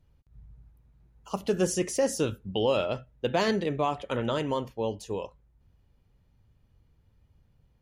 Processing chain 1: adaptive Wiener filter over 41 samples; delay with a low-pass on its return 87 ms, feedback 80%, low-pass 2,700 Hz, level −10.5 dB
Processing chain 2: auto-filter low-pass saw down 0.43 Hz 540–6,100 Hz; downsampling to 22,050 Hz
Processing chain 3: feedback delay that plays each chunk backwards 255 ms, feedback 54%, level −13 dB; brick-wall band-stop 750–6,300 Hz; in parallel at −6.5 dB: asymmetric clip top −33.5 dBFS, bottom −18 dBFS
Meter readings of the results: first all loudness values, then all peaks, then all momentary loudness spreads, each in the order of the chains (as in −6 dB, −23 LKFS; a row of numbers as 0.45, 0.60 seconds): −29.5, −27.0, −27.5 LKFS; −13.5, −11.0, −13.0 dBFS; 11, 11, 11 LU